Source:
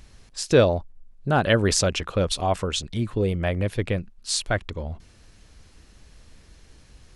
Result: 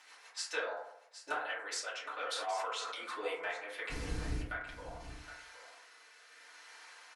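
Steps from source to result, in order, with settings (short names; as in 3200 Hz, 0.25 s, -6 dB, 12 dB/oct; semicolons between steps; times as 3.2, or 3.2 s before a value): Bessel high-pass 1300 Hz, order 4; high shelf 3100 Hz -11 dB; compressor 4:1, threshold -49 dBFS, peak gain reduction 21 dB; 3.9–4.41 room tone; rotary speaker horn 6.7 Hz, later 0.7 Hz, at 3; echo 0.768 s -12.5 dB; FDN reverb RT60 0.76 s, low-frequency decay 0.95×, high-frequency decay 0.3×, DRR -9.5 dB; 2.26–3.04 sustainer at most 25 dB/s; gain +5 dB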